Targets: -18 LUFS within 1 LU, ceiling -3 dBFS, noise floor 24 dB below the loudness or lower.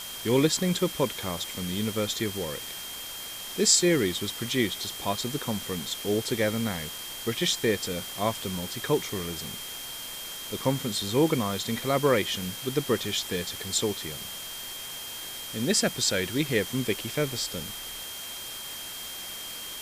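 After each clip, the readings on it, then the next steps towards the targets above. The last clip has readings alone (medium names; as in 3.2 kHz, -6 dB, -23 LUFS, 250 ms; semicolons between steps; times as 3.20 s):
steady tone 3.2 kHz; tone level -40 dBFS; noise floor -39 dBFS; noise floor target -53 dBFS; loudness -28.5 LUFS; peak level -8.5 dBFS; loudness target -18.0 LUFS
-> band-stop 3.2 kHz, Q 30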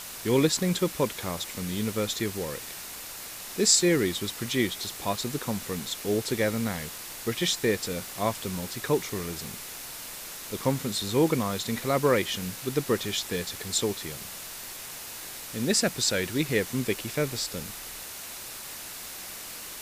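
steady tone not found; noise floor -40 dBFS; noise floor target -53 dBFS
-> noise reduction 13 dB, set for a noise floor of -40 dBFS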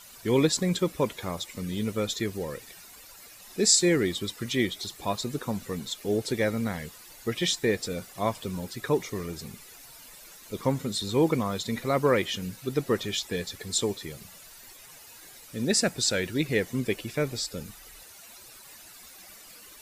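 noise floor -49 dBFS; noise floor target -52 dBFS
-> noise reduction 6 dB, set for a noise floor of -49 dBFS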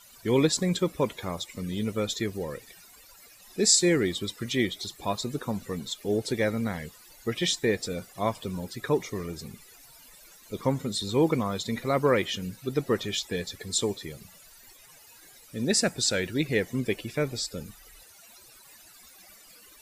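noise floor -53 dBFS; loudness -28.0 LUFS; peak level -9.0 dBFS; loudness target -18.0 LUFS
-> trim +10 dB; peak limiter -3 dBFS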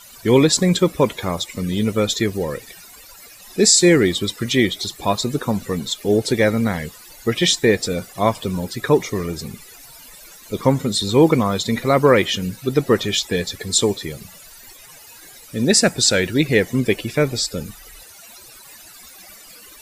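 loudness -18.5 LUFS; peak level -3.0 dBFS; noise floor -43 dBFS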